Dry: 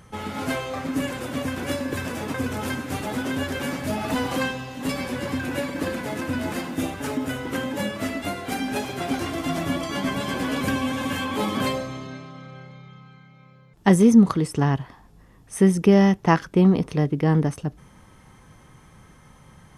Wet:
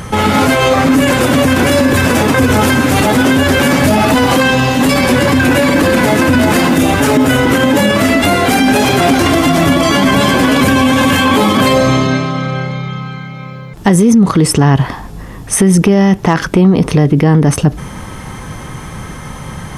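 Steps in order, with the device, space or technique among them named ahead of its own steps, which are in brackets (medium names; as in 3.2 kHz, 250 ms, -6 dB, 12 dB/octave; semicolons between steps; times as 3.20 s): loud club master (compression 3:1, threshold -22 dBFS, peak gain reduction 10 dB; hard clipper -15 dBFS, distortion -34 dB; loudness maximiser +25 dB); trim -1 dB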